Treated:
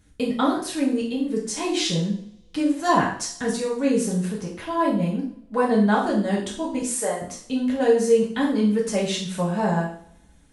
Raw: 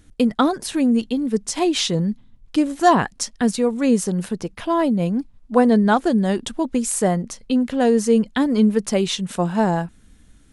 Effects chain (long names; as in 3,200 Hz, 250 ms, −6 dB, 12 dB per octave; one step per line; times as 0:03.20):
0:06.82–0:07.22: high-pass filter 450 Hz 12 dB per octave
coupled-rooms reverb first 0.51 s, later 1.6 s, from −28 dB, DRR −5.5 dB
level −8.5 dB